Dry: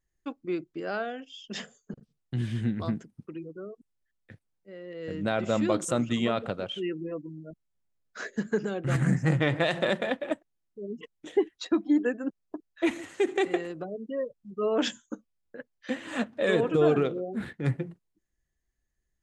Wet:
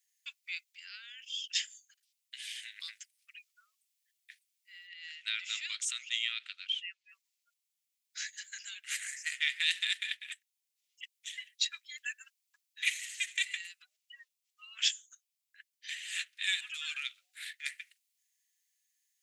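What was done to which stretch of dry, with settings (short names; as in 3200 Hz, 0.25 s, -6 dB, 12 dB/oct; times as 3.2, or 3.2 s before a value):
0.72–1.55 compressor 2.5:1, threshold -38 dBFS
4.87–7.09 BPF 600–5300 Hz
whole clip: steep high-pass 2100 Hz 36 dB/oct; high shelf 5000 Hz +6.5 dB; vocal rider within 4 dB 2 s; gain +4 dB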